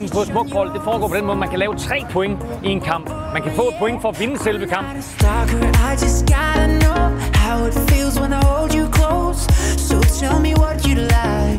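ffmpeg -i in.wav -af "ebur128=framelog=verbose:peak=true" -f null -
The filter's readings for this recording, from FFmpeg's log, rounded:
Integrated loudness:
  I:         -17.7 LUFS
  Threshold: -27.7 LUFS
Loudness range:
  LRA:         4.3 LU
  Threshold: -37.7 LUFS
  LRA low:   -20.5 LUFS
  LRA high:  -16.3 LUFS
True peak:
  Peak:       -3.2 dBFS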